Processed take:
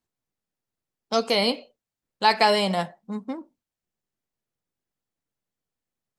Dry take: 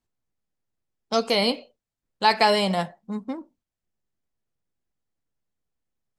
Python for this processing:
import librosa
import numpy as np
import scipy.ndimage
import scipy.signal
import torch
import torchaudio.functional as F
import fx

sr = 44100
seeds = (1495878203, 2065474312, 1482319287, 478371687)

y = fx.low_shelf(x, sr, hz=71.0, db=-10.5)